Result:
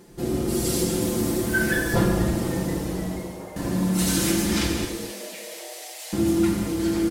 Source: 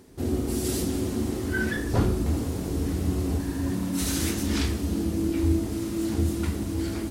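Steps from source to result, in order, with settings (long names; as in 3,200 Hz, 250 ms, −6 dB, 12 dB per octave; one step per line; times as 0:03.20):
0:01.01–0:01.95: high-shelf EQ 9,800 Hz +11 dB
0:04.84–0:06.13: elliptic high-pass filter 1,800 Hz, stop band 80 dB
comb filter 5.8 ms, depth 88%
0:02.55–0:03.56: fade out
echo with shifted repeats 483 ms, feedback 61%, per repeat +140 Hz, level −17 dB
reverb whose tail is shaped and stops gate 280 ms flat, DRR 3 dB
level +1 dB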